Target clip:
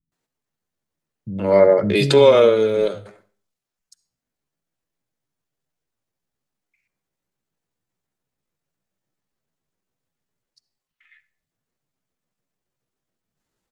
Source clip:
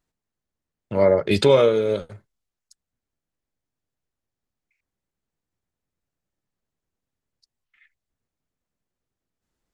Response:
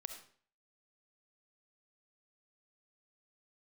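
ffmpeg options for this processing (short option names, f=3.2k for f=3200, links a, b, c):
-filter_complex "[0:a]atempo=0.71,lowshelf=f=110:t=q:w=1.5:g=-6.5,acrossover=split=230[a][b];[b]adelay=120[c];[a][c]amix=inputs=2:normalize=0,asplit=2[d][e];[1:a]atrim=start_sample=2205[f];[e][f]afir=irnorm=-1:irlink=0,volume=-5.5dB[g];[d][g]amix=inputs=2:normalize=0,volume=1dB"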